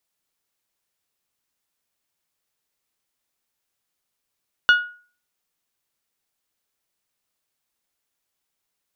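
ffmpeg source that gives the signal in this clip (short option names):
-f lavfi -i "aevalsrc='0.398*pow(10,-3*t/0.41)*sin(2*PI*1450*t)+0.158*pow(10,-3*t/0.252)*sin(2*PI*2900*t)+0.0631*pow(10,-3*t/0.222)*sin(2*PI*3480*t)+0.0251*pow(10,-3*t/0.19)*sin(2*PI*4350*t)+0.01*pow(10,-3*t/0.155)*sin(2*PI*5800*t)':d=0.89:s=44100"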